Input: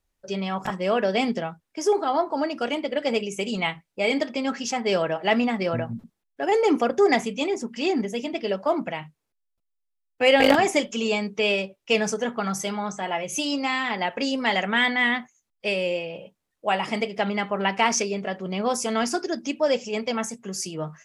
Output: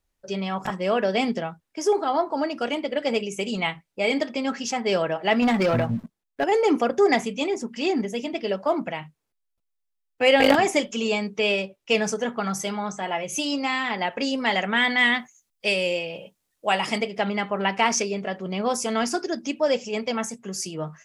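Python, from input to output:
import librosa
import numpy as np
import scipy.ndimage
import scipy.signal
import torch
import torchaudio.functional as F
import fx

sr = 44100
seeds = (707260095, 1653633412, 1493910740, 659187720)

y = fx.leveller(x, sr, passes=2, at=(5.42, 6.44))
y = fx.high_shelf(y, sr, hz=3400.0, db=10.0, at=(14.9, 16.98))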